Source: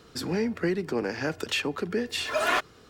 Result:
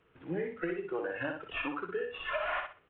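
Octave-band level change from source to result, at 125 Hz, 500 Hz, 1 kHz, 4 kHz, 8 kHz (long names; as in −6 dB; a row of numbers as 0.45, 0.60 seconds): −11.0 dB, −6.5 dB, −6.5 dB, −14.0 dB, below −40 dB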